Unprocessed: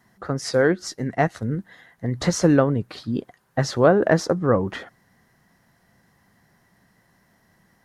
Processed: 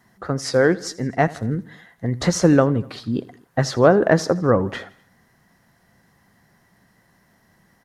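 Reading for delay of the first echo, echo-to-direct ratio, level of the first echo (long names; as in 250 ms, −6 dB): 82 ms, −19.0 dB, −20.5 dB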